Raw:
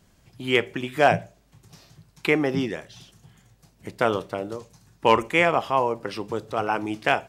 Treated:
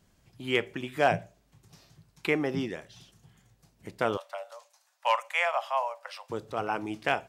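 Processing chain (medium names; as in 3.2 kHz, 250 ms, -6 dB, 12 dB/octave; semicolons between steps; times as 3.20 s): 4.17–6.30 s: steep high-pass 550 Hz 96 dB/octave; trim -6 dB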